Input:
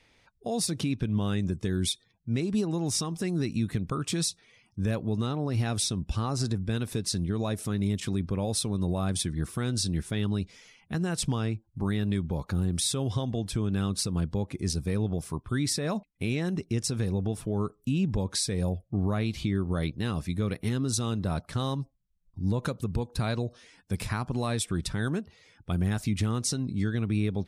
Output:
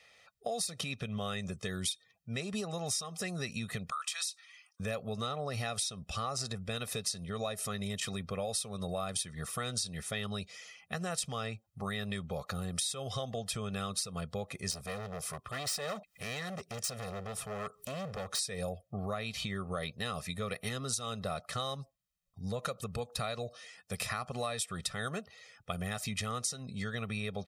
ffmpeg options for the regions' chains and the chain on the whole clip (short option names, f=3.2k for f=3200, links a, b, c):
-filter_complex "[0:a]asettb=1/sr,asplit=3[a][b][c];[a]atrim=end=3.914[d];[b]atrim=start=3.91:end=4.8,asetpts=PTS-STARTPTS,afade=t=in:d=0.004:c=qsin,afade=t=out:st=0.886:d=0.004:c=qsin,highpass=f=1k:w=0.5412,highpass=f=1k:w=1.3066,acompressor=threshold=-35dB:ratio=3:attack=3.2:release=140:knee=1:detection=peak[e];[c]atrim=start=4.796[f];[d][e]acrossfade=d=0.004:c1=hsin:c2=qsin[g];[g][f]acrossfade=d=0.004:c1=qsin:c2=hsin,asettb=1/sr,asplit=3[h][i][j];[h]atrim=end=14.714[k];[i]atrim=start=14.71:end=18.39,asetpts=PTS-STARTPTS,afade=t=in:d=0.004:c=qsin,afade=t=out:st=3.676:d=0.004:c=qsin,acompressor=mode=upward:threshold=-34dB:ratio=2.5:attack=3.2:release=140:knee=2.83:detection=peak,asoftclip=type=hard:threshold=-31.5dB[l];[j]atrim=start=18.386[m];[k][l]acrossfade=d=0.004:c1=hsin:c2=qsin[n];[n][m]acrossfade=d=0.004:c1=qsin:c2=hsin,highpass=f=660:p=1,aecho=1:1:1.6:0.86,acompressor=threshold=-33dB:ratio=10,volume=1.5dB"